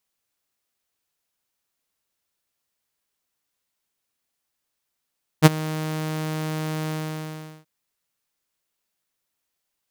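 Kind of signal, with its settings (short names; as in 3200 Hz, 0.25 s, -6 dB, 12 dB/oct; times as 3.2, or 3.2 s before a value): ADSR saw 156 Hz, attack 37 ms, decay 26 ms, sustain -20 dB, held 1.47 s, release 0.76 s -3 dBFS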